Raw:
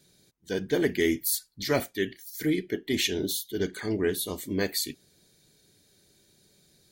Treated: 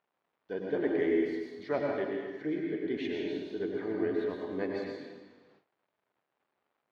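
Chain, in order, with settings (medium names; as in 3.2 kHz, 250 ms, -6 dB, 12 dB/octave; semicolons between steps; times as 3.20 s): added noise white -58 dBFS; plate-style reverb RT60 1.4 s, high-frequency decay 0.9×, pre-delay 85 ms, DRR -1 dB; gate with hold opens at -36 dBFS; crackle 390 per s -53 dBFS; band-pass filter 700 Hz, Q 0.69; distance through air 230 m; trim -3.5 dB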